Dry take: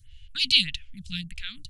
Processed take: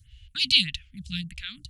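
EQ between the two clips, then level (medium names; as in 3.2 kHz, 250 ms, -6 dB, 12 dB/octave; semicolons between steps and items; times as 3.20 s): high-pass 44 Hz; bass shelf 180 Hz +4.5 dB; 0.0 dB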